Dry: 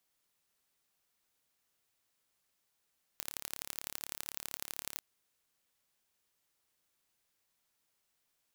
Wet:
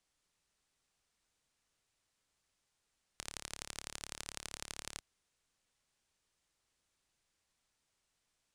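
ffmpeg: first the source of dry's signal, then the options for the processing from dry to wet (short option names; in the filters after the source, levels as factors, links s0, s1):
-f lavfi -i "aevalsrc='0.316*eq(mod(n,1232),0)*(0.5+0.5*eq(mod(n,3696),0))':d=1.8:s=44100"
-af "lowpass=f=9500:w=0.5412,lowpass=f=9500:w=1.3066,lowshelf=f=90:g=11,acrusher=bits=8:mode=log:mix=0:aa=0.000001"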